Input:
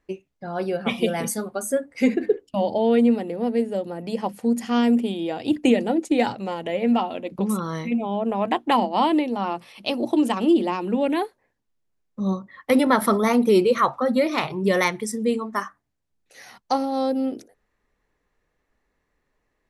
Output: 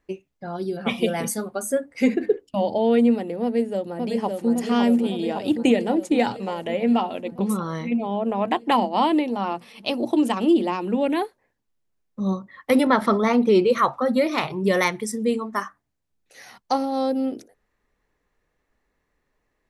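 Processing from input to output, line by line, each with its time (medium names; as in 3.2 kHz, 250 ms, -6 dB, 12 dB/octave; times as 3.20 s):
0.56–0.77 s: time-frequency box 420–3000 Hz -15 dB
3.43–4.50 s: echo throw 560 ms, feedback 70%, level -3.5 dB
7.53–8.45 s: treble shelf 5.8 kHz -> 11 kHz -8.5 dB
12.87–13.70 s: low-pass 5 kHz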